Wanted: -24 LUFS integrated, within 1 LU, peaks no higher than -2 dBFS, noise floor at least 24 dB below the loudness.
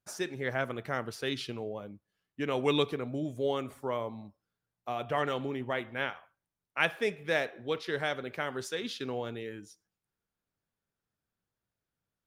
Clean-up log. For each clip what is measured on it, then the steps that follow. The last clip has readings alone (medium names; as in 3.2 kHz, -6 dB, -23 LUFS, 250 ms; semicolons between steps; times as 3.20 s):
loudness -34.0 LUFS; peak level -10.5 dBFS; loudness target -24.0 LUFS
-> trim +10 dB; peak limiter -2 dBFS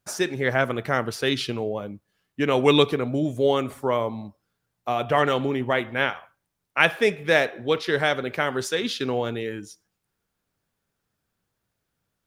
loudness -24.0 LUFS; peak level -2.0 dBFS; noise floor -80 dBFS